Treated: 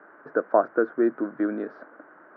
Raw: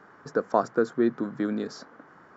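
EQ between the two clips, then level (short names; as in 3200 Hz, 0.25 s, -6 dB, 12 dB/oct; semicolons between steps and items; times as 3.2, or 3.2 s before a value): speaker cabinet 280–2200 Hz, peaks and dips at 320 Hz +8 dB, 610 Hz +9 dB, 1500 Hz +6 dB; -1.5 dB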